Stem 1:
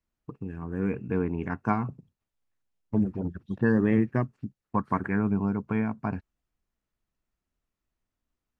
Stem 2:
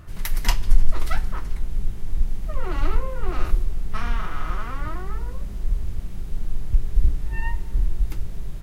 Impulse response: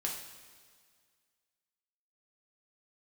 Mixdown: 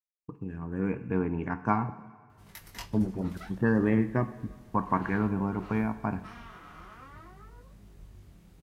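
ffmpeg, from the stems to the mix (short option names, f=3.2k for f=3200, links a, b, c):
-filter_complex "[0:a]agate=range=-33dB:threshold=-48dB:ratio=3:detection=peak,adynamicequalizer=threshold=0.0112:dfrequency=890:dqfactor=1.3:tfrequency=890:tqfactor=1.3:attack=5:release=100:ratio=0.375:range=2:mode=boostabove:tftype=bell,volume=-4.5dB,asplit=2[a][b];[b]volume=-7.5dB[c];[1:a]highpass=84,flanger=delay=18.5:depth=5.4:speed=0.56,adelay=2300,volume=-11.5dB[d];[2:a]atrim=start_sample=2205[e];[c][e]afir=irnorm=-1:irlink=0[f];[a][d][f]amix=inputs=3:normalize=0"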